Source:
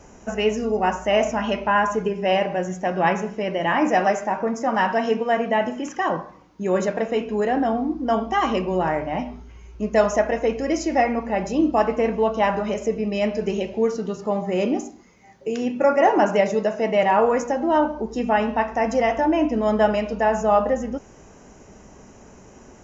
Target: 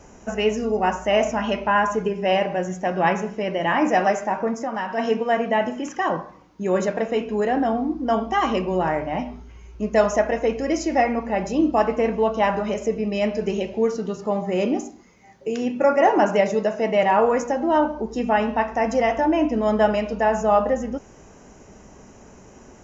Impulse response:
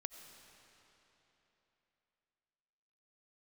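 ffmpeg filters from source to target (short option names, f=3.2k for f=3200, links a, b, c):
-filter_complex "[0:a]asplit=3[a][b][c];[a]afade=t=out:st=4.54:d=0.02[d];[b]acompressor=threshold=-24dB:ratio=6,afade=t=in:st=4.54:d=0.02,afade=t=out:st=4.97:d=0.02[e];[c]afade=t=in:st=4.97:d=0.02[f];[d][e][f]amix=inputs=3:normalize=0"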